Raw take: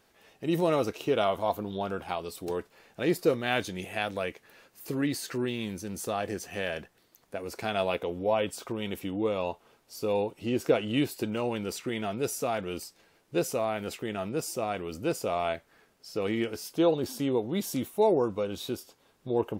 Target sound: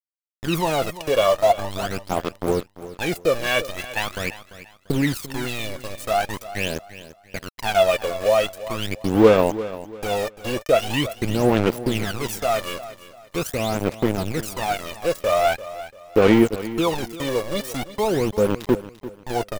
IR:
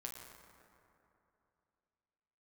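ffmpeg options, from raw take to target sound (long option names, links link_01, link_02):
-af "aeval=exprs='val(0)*gte(abs(val(0)),0.0266)':channel_layout=same,aphaser=in_gain=1:out_gain=1:delay=1.8:decay=0.75:speed=0.43:type=sinusoidal,aecho=1:1:343|686|1029:0.178|0.0569|0.0182,volume=4.5dB"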